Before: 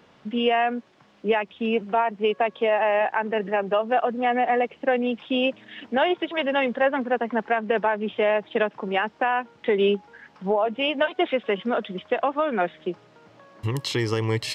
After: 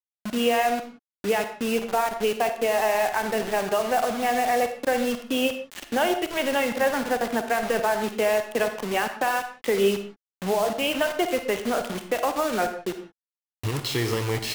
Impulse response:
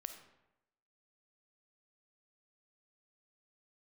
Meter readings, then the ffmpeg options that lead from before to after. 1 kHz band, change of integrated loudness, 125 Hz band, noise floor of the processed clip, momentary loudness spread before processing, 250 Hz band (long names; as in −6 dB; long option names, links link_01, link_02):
−1.0 dB, −1.0 dB, can't be measured, below −85 dBFS, 7 LU, −1.0 dB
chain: -filter_complex "[0:a]asplit=2[link_01][link_02];[link_02]acompressor=threshold=-35dB:ratio=8,volume=-1.5dB[link_03];[link_01][link_03]amix=inputs=2:normalize=0,acrusher=bits=4:mix=0:aa=0.000001[link_04];[1:a]atrim=start_sample=2205,afade=type=out:start_time=0.26:duration=0.01,atrim=end_sample=11907,asetrate=48510,aresample=44100[link_05];[link_04][link_05]afir=irnorm=-1:irlink=0,volume=2dB"